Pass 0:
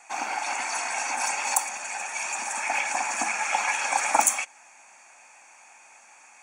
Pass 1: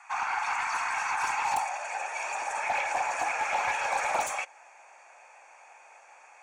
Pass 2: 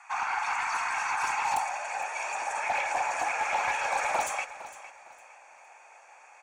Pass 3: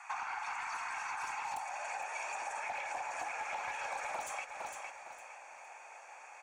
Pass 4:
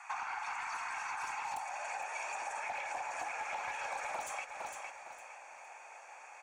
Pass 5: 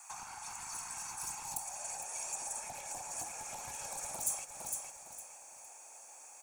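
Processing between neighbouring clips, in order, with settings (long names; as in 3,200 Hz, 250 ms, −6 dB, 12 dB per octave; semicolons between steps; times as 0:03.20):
high-pass filter sweep 1,100 Hz → 480 Hz, 0:01.28–0:01.97; gain into a clipping stage and back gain 20 dB; mid-hump overdrive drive 3 dB, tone 1,800 Hz, clips at −19.5 dBFS
repeating echo 458 ms, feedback 28%, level −15 dB
downward compressor 10 to 1, threshold −38 dBFS, peak gain reduction 14 dB; level +1 dB
no processing that can be heard
drawn EQ curve 160 Hz 0 dB, 490 Hz −14 dB, 2,100 Hz −24 dB, 11,000 Hz +11 dB; level +10 dB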